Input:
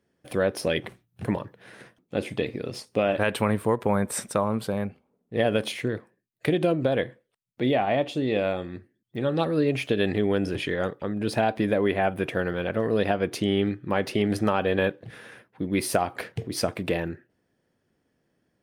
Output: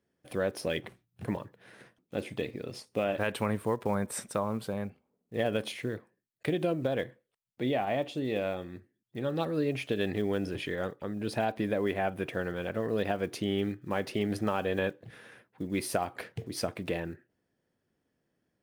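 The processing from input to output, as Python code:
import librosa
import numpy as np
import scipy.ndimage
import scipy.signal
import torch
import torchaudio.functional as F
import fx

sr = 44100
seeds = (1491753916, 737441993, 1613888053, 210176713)

y = fx.block_float(x, sr, bits=7)
y = F.gain(torch.from_numpy(y), -6.5).numpy()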